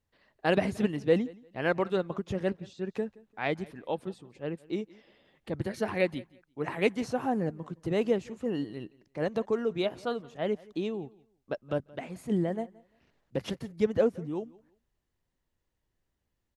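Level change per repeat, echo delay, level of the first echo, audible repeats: no steady repeat, 0.173 s, -23.0 dB, 1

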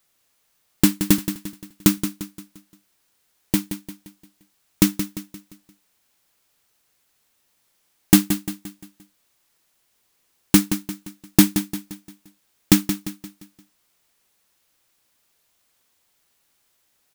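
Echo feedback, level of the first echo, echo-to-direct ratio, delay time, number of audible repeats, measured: 43%, -10.0 dB, -9.0 dB, 0.174 s, 4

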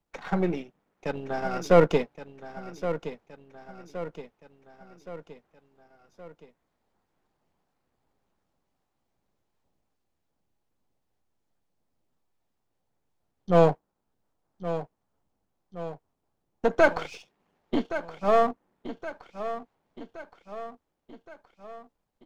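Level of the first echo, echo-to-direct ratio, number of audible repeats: -12.0 dB, -10.5 dB, 4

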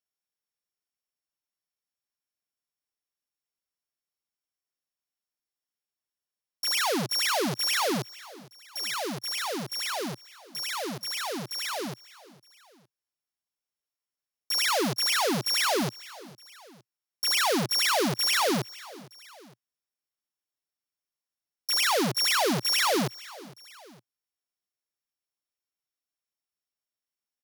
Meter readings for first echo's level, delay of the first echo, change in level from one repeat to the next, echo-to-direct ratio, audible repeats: -20.5 dB, 0.459 s, -5.0 dB, -19.5 dB, 2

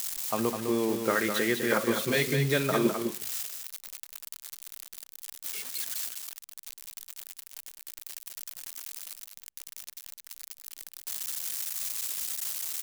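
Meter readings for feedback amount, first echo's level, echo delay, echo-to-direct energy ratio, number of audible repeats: no steady repeat, -6.5 dB, 0.205 s, -6.5 dB, 1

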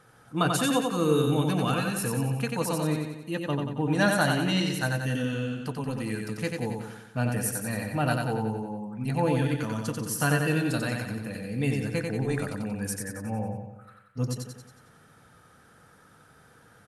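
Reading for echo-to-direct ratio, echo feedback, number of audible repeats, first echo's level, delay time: -2.5 dB, 53%, 6, -4.0 dB, 91 ms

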